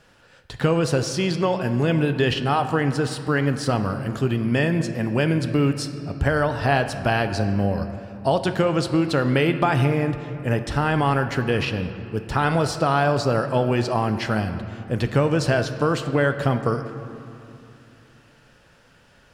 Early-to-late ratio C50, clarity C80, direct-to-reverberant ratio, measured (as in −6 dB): 10.0 dB, 10.5 dB, 8.0 dB